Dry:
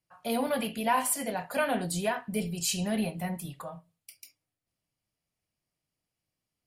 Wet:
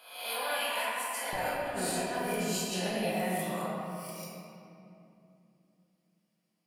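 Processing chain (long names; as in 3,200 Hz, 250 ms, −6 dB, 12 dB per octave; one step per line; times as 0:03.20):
peak hold with a rise ahead of every peak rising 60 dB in 0.72 s
high-pass filter 1,100 Hz 12 dB per octave, from 0:01.33 260 Hz
compressor whose output falls as the input rises −32 dBFS, ratio −0.5
convolution reverb RT60 2.8 s, pre-delay 6 ms, DRR −5.5 dB
level −6 dB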